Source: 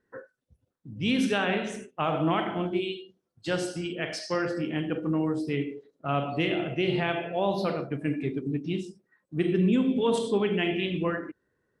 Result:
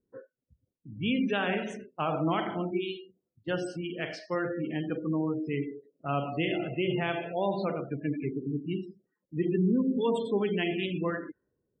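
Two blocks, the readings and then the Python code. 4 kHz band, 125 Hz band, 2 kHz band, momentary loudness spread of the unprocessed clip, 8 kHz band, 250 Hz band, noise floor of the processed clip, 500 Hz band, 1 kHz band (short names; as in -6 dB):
-4.5 dB, -2.5 dB, -3.0 dB, 11 LU, under -10 dB, -2.5 dB, -84 dBFS, -2.5 dB, -2.5 dB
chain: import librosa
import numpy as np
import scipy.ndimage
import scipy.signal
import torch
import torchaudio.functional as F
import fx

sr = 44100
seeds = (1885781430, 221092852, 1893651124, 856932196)

y = fx.spec_gate(x, sr, threshold_db=-25, keep='strong')
y = fx.env_lowpass(y, sr, base_hz=410.0, full_db=-26.0)
y = y * 10.0 ** (-2.5 / 20.0)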